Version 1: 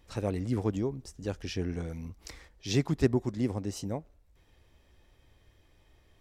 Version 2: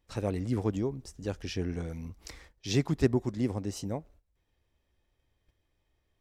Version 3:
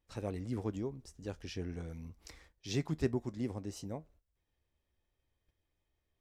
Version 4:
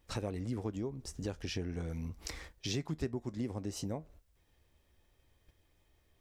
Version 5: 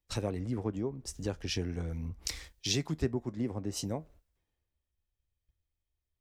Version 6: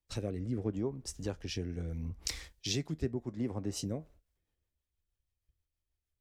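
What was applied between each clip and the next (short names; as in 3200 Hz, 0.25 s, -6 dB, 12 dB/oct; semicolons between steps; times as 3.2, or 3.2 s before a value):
gate -56 dBFS, range -13 dB
resonator 78 Hz, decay 0.15 s, harmonics all, mix 40%; gain -5 dB
compressor 4:1, threshold -48 dBFS, peak gain reduction 18.5 dB; gain +12 dB
three-band expander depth 70%; gain +3 dB
rotary speaker horn 0.75 Hz, later 6.3 Hz, at 3.58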